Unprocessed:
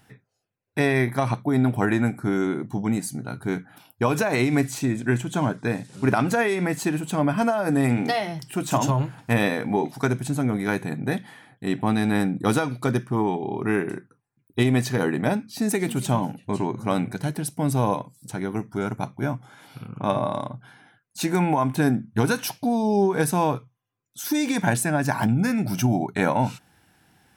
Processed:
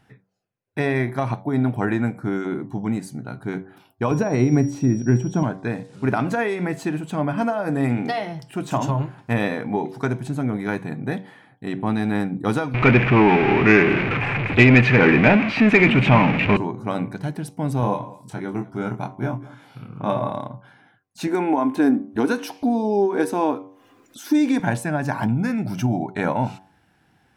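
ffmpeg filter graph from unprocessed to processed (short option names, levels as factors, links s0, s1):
-filter_complex "[0:a]asettb=1/sr,asplit=3[s0][s1][s2];[s0]atrim=end=4.114[s3];[s1]atrim=start=4.11:end=5.43,asetpts=PTS-STARTPTS,afade=t=in:d=0.004:c=qsin,afade=t=out:st=1.316:d=0.004:c=qsin,tiltshelf=f=660:g=7,aeval=exprs='val(0)+0.0141*sin(2*PI*5700*n/s)':c=same[s4];[s2]atrim=start=5.426[s5];[s3][s4]acrossfade=d=0.004:c1=hsin:c2=qsin[s6];[s6][s5]acrossfade=d=0.004:c1=qsin:c2=hsin,asettb=1/sr,asplit=3[s7][s8][s9];[s7]atrim=end=12.744[s10];[s8]atrim=start=12.74:end=16.57,asetpts=PTS-STARTPTS,afade=t=in:d=0.004:c=qsin,afade=t=out:st=3.826:d=0.004:c=qsin,aeval=exprs='val(0)+0.5*0.0631*sgn(val(0))':c=same,lowpass=f=2400:t=q:w=6,acontrast=65[s11];[s9]atrim=start=16.566[s12];[s10][s11]acrossfade=d=0.004:c1=hsin:c2=qsin[s13];[s13][s12]acrossfade=d=0.004:c1=qsin:c2=hsin,asettb=1/sr,asplit=3[s14][s15][s16];[s14]atrim=end=17.804[s17];[s15]atrim=start=17.8:end=20.31,asetpts=PTS-STARTPTS,afade=t=in:d=0.004:c=qsin,afade=t=out:st=2.506:d=0.004:c=qsin,highpass=42,asplit=2[s18][s19];[s19]adelay=24,volume=0.562[s20];[s18][s20]amix=inputs=2:normalize=0,atrim=end_sample=110691,aecho=1:1:199:0.106,atrim=end_sample=110691[s21];[s16]atrim=start=20.306[s22];[s17][s21]acrossfade=d=0.004:c1=hsin:c2=qsin[s23];[s23][s22]acrossfade=d=0.004:c1=qsin:c2=hsin,asettb=1/sr,asplit=3[s24][s25][s26];[s24]atrim=end=21.274[s27];[s25]atrim=start=21.27:end=24.6,asetpts=PTS-STARTPTS,afade=t=in:d=0.004:c=qsin,afade=t=out:st=3.326:d=0.004:c=qsin,lowshelf=f=200:t=q:w=3:g=-10,acompressor=mode=upward:threshold=0.0501:ratio=2.5:attack=3.2:release=140:knee=2.83:detection=peak[s28];[s26]atrim=start=24.596[s29];[s27][s28]acrossfade=d=0.004:c1=hsin:c2=qsin[s30];[s30][s29]acrossfade=d=0.004:c1=qsin:c2=hsin,lowpass=f=2800:p=1,bandreject=f=95.15:t=h:w=4,bandreject=f=190.3:t=h:w=4,bandreject=f=285.45:t=h:w=4,bandreject=f=380.6:t=h:w=4,bandreject=f=475.75:t=h:w=4,bandreject=f=570.9:t=h:w=4,bandreject=f=666.05:t=h:w=4,bandreject=f=761.2:t=h:w=4,bandreject=f=856.35:t=h:w=4,bandreject=f=951.5:t=h:w=4,bandreject=f=1046.65:t=h:w=4,bandreject=f=1141.8:t=h:w=4"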